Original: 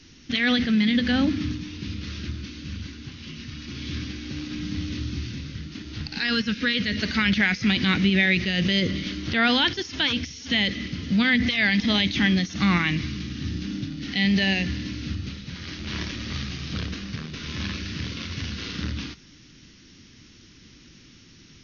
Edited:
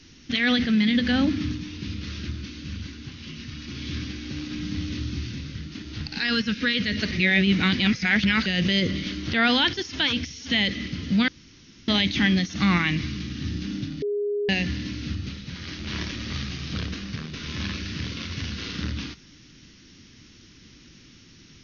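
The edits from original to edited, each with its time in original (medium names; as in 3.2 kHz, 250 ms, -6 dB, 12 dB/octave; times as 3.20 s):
7.11–8.46 s: reverse
11.28–11.88 s: room tone
14.02–14.49 s: bleep 411 Hz -23 dBFS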